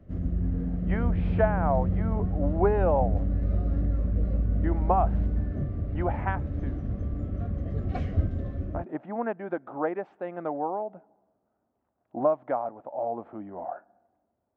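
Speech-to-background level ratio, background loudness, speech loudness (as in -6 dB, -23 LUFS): -1.5 dB, -29.5 LUFS, -31.0 LUFS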